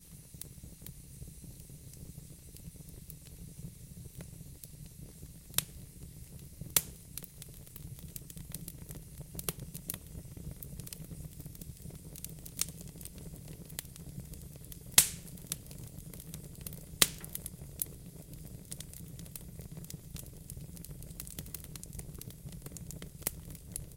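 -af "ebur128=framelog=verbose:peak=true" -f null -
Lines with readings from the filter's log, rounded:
Integrated loudness:
  I:         -38.1 LUFS
  Threshold: -49.1 LUFS
Loudness range:
  LRA:        16.2 LU
  Threshold: -58.7 LUFS
  LRA low:   -49.6 LUFS
  LRA high:  -33.4 LUFS
True peak:
  Peak:       -2.2 dBFS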